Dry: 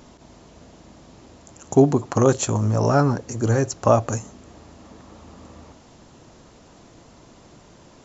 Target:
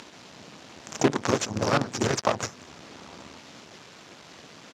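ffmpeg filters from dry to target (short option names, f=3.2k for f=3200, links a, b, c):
-filter_complex "[0:a]lowshelf=f=340:g=4.5,bandreject=f=60:t=h:w=6,bandreject=f=120:t=h:w=6,bandreject=f=180:t=h:w=6,bandreject=f=240:t=h:w=6,bandreject=f=300:t=h:w=6,bandreject=f=360:t=h:w=6,bandreject=f=420:t=h:w=6,bandreject=f=480:t=h:w=6,crystalizer=i=9:c=0,atempo=1.7,acompressor=threshold=-20dB:ratio=6,asplit=3[a][b][c];[b]asetrate=37084,aresample=44100,atempo=1.18921,volume=-4dB[d];[c]asetrate=52444,aresample=44100,atempo=0.840896,volume=-11dB[e];[a][d][e]amix=inputs=3:normalize=0,acrusher=bits=4:dc=4:mix=0:aa=0.000001,highpass=140,lowpass=3.6k"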